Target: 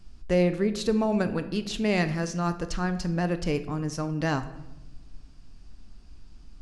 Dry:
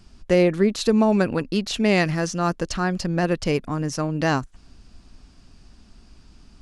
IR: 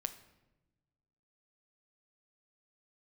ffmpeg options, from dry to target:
-filter_complex "[0:a]lowshelf=frequency=67:gain=10[link_01];[1:a]atrim=start_sample=2205[link_02];[link_01][link_02]afir=irnorm=-1:irlink=0,volume=-5.5dB"

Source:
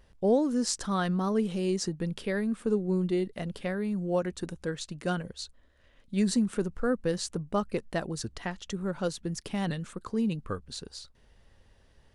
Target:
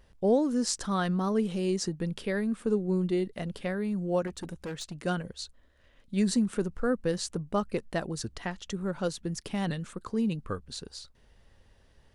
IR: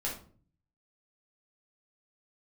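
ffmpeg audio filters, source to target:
-filter_complex "[0:a]asettb=1/sr,asplit=3[link_01][link_02][link_03];[link_01]atrim=end=4.274[link_04];[link_02]atrim=start=4.27:end=4.93,asetpts=PTS-STARTPTS,afade=type=in:duration=0.004:curve=qsin,afade=type=out:start_time=0.656:duration=0.004:curve=qsin,asoftclip=type=hard:threshold=-32.5dB[link_05];[link_03]atrim=start=4.926[link_06];[link_04][link_05]acrossfade=duration=0.004:curve1=hsin:curve2=qsin[link_07];[link_07][link_06]acrossfade=duration=0.004:curve1=qsin:curve2=hsin"

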